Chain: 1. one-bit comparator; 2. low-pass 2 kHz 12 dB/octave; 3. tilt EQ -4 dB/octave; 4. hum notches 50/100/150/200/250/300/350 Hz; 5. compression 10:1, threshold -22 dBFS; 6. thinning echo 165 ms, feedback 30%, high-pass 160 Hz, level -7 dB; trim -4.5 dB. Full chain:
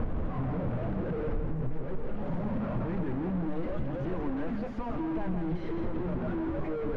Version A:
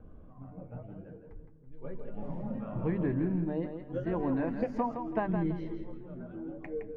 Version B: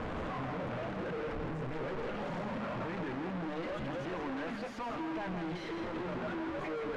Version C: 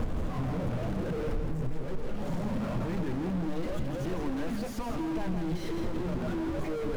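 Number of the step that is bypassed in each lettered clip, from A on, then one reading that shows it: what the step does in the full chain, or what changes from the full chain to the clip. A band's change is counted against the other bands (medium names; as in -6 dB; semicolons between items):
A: 1, crest factor change +8.5 dB; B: 3, 2 kHz band +9.0 dB; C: 2, 2 kHz band +2.0 dB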